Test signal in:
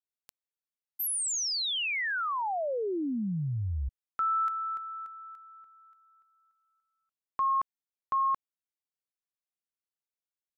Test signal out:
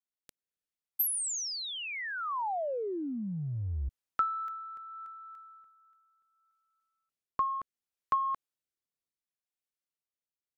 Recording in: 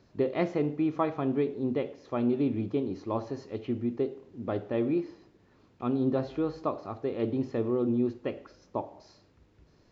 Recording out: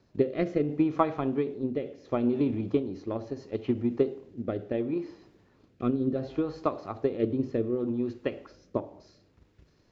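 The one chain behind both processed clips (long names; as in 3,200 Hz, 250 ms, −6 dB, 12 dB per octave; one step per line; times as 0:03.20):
transient designer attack +9 dB, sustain +5 dB
rotating-speaker cabinet horn 0.7 Hz
level −1.5 dB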